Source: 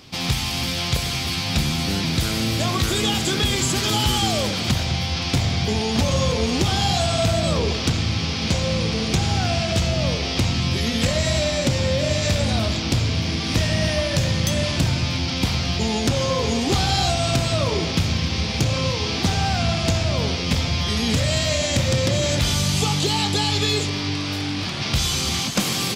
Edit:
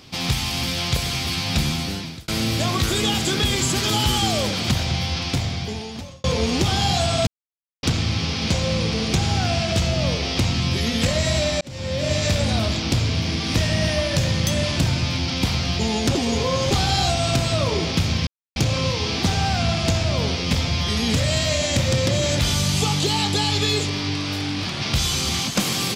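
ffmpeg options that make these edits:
-filter_complex "[0:a]asplit=10[s0][s1][s2][s3][s4][s5][s6][s7][s8][s9];[s0]atrim=end=2.28,asetpts=PTS-STARTPTS,afade=t=out:st=1.68:d=0.6[s10];[s1]atrim=start=2.28:end=6.24,asetpts=PTS-STARTPTS,afade=t=in:d=0.004:c=hsin,afade=t=out:st=2.8:d=1.16[s11];[s2]atrim=start=6.24:end=7.27,asetpts=PTS-STARTPTS,afade=t=in:d=0.004:c=hsin,afade=t=out:st=1.026:d=0.004:c=hsin[s12];[s3]atrim=start=7.27:end=7.83,asetpts=PTS-STARTPTS,volume=0[s13];[s4]atrim=start=7.83:end=11.61,asetpts=PTS-STARTPTS,afade=t=in:d=0.004:c=hsin,afade=t=out:st=3.776:d=0.004:c=hsin[s14];[s5]atrim=start=11.61:end=16.152,asetpts=PTS-STARTPTS,afade=t=in:d=0.52[s15];[s6]atrim=start=16.148:end=16.712,asetpts=PTS-STARTPTS,areverse[s16];[s7]atrim=start=16.708:end=18.27,asetpts=PTS-STARTPTS,afade=t=out:st=1.558:d=0.004:c=hsin[s17];[s8]atrim=start=18.27:end=18.56,asetpts=PTS-STARTPTS,volume=0[s18];[s9]atrim=start=18.56,asetpts=PTS-STARTPTS,afade=t=in:d=0.004:c=hsin[s19];[s10][s11][s12][s13][s14][s15]concat=n=6:v=0:a=1[s20];[s20][s16]acrossfade=d=0.004:c1=hsin:c2=hsin[s21];[s17][s18][s19]concat=n=3:v=0:a=1[s22];[s21][s22]acrossfade=d=0.004:c1=hsin:c2=hsin"

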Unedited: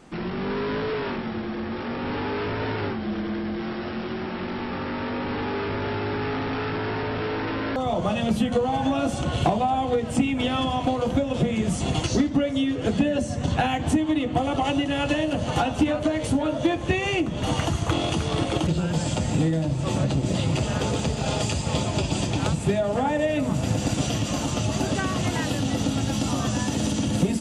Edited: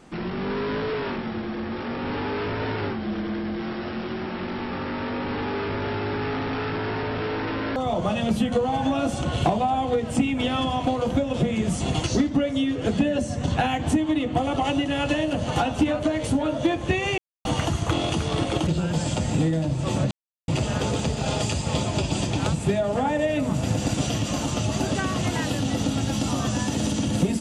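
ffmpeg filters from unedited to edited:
-filter_complex "[0:a]asplit=5[s0][s1][s2][s3][s4];[s0]atrim=end=17.18,asetpts=PTS-STARTPTS,afade=t=out:st=17.176:d=0.004:c=hsin[s5];[s1]atrim=start=17.18:end=17.45,asetpts=PTS-STARTPTS,volume=0[s6];[s2]atrim=start=17.45:end=20.11,asetpts=PTS-STARTPTS,afade=t=in:d=0.004:c=hsin,afade=t=out:st=2.656:d=0.004:c=hsin[s7];[s3]atrim=start=20.11:end=20.48,asetpts=PTS-STARTPTS,volume=0[s8];[s4]atrim=start=20.48,asetpts=PTS-STARTPTS,afade=t=in:d=0.004:c=hsin[s9];[s5][s6][s7][s8][s9]concat=n=5:v=0:a=1"

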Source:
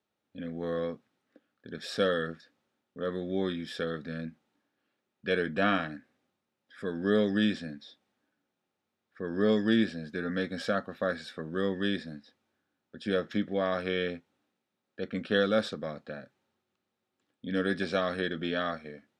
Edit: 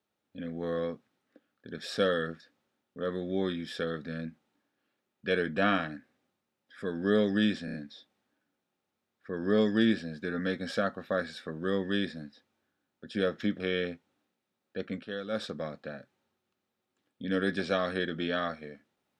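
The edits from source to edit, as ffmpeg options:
-filter_complex "[0:a]asplit=7[s0][s1][s2][s3][s4][s5][s6];[s0]atrim=end=7.682[s7];[s1]atrim=start=7.648:end=7.682[s8];[s2]atrim=start=7.648:end=7.682[s9];[s3]atrim=start=7.648:end=13.512[s10];[s4]atrim=start=13.828:end=15.31,asetpts=PTS-STARTPTS,afade=t=out:st=1.172:d=0.31:c=qsin:silence=0.266073[s11];[s5]atrim=start=15.31:end=15.51,asetpts=PTS-STARTPTS,volume=0.266[s12];[s6]atrim=start=15.51,asetpts=PTS-STARTPTS,afade=t=in:d=0.31:c=qsin:silence=0.266073[s13];[s7][s8]acrossfade=d=0.004:c1=hsin:c2=hsin[s14];[s14][s9]acrossfade=d=0.004:c1=hsin:c2=hsin[s15];[s15][s10]acrossfade=d=0.004:c1=hsin:c2=hsin[s16];[s11][s12][s13]concat=n=3:v=0:a=1[s17];[s16][s17]acrossfade=d=0.004:c1=hsin:c2=hsin"

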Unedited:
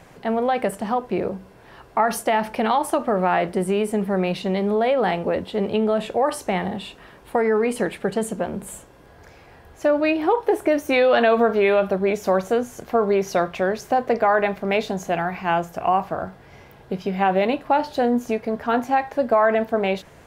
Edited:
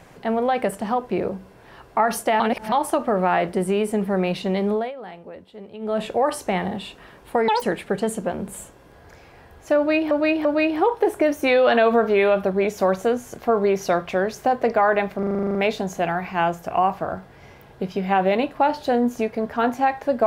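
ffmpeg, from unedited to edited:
-filter_complex "[0:a]asplit=18[s0][s1][s2][s3][s4][s5][s6][s7][s8][s9][s10][s11][s12][s13][s14][s15][s16][s17];[s0]atrim=end=2.402[s18];[s1]atrim=start=2.398:end=2.722,asetpts=PTS-STARTPTS,areverse[s19];[s2]atrim=start=2.718:end=4.92,asetpts=PTS-STARTPTS,afade=t=out:st=1.992:d=0.21:silence=0.149624[s20];[s3]atrim=start=4.92:end=5.79,asetpts=PTS-STARTPTS,volume=0.15[s21];[s4]atrim=start=5.79:end=7.484,asetpts=PTS-STARTPTS,afade=t=in:d=0.21:silence=0.149624[s22];[s5]atrim=start=7.48:end=7.76,asetpts=PTS-STARTPTS,asetrate=88200,aresample=44100[s23];[s6]atrim=start=7.756:end=10.252[s24];[s7]atrim=start=9.908:end=10.252[s25];[s8]atrim=start=9.908:end=14.692[s26];[s9]atrim=start=14.648:end=14.692[s27];[s10]atrim=start=14.648:end=14.692[s28];[s11]atrim=start=14.648:end=14.692[s29];[s12]atrim=start=14.648:end=14.692[s30];[s13]atrim=start=14.648:end=14.692[s31];[s14]atrim=start=14.648:end=14.692[s32];[s15]atrim=start=14.648:end=14.692[s33];[s16]atrim=start=14.648:end=14.692[s34];[s17]atrim=start=14.648[s35];[s18][s19]acrossfade=d=0.004:c1=hsin:c2=hsin[s36];[s20][s21][s22]concat=n=3:v=0:a=1[s37];[s36][s37]acrossfade=d=0.004:c1=hsin:c2=hsin[s38];[s38][s23]acrossfade=d=0.004:c1=hsin:c2=hsin[s39];[s39][s24]acrossfade=d=0.004:c1=hsin:c2=hsin[s40];[s40][s25]acrossfade=d=0.004:c1=hsin:c2=hsin[s41];[s41][s26]acrossfade=d=0.004:c1=hsin:c2=hsin[s42];[s42][s27]acrossfade=d=0.004:c1=hsin:c2=hsin[s43];[s43][s28]acrossfade=d=0.004:c1=hsin:c2=hsin[s44];[s44][s29]acrossfade=d=0.004:c1=hsin:c2=hsin[s45];[s45][s30]acrossfade=d=0.004:c1=hsin:c2=hsin[s46];[s46][s31]acrossfade=d=0.004:c1=hsin:c2=hsin[s47];[s47][s32]acrossfade=d=0.004:c1=hsin:c2=hsin[s48];[s48][s33]acrossfade=d=0.004:c1=hsin:c2=hsin[s49];[s49][s34]acrossfade=d=0.004:c1=hsin:c2=hsin[s50];[s50][s35]acrossfade=d=0.004:c1=hsin:c2=hsin"

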